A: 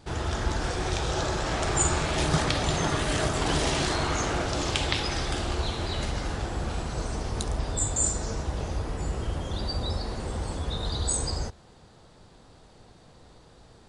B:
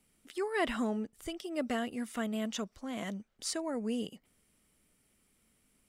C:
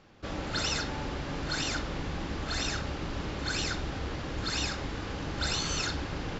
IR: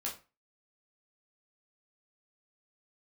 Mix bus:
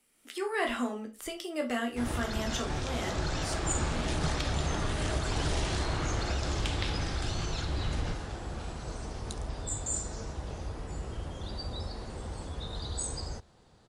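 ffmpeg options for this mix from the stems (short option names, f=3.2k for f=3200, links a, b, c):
-filter_complex "[0:a]asoftclip=type=tanh:threshold=-8.5dB,adelay=1900,volume=-14dB[a];[1:a]lowshelf=f=220:g=-10,volume=-1dB,afade=t=out:st=3.01:d=0.67:silence=0.298538,asplit=3[b][c][d];[c]volume=-5dB[e];[2:a]adelay=1750,volume=1.5dB[f];[d]apad=whole_len=359339[g];[f][g]sidechaincompress=threshold=-50dB:ratio=8:attack=16:release=108[h];[b][h]amix=inputs=2:normalize=0,acrossover=split=140[i][j];[j]acompressor=threshold=-45dB:ratio=6[k];[i][k]amix=inputs=2:normalize=0,alimiter=level_in=8dB:limit=-24dB:level=0:latency=1,volume=-8dB,volume=0dB[l];[3:a]atrim=start_sample=2205[m];[e][m]afir=irnorm=-1:irlink=0[n];[a][l][n]amix=inputs=3:normalize=0,dynaudnorm=f=140:g=3:m=6.5dB"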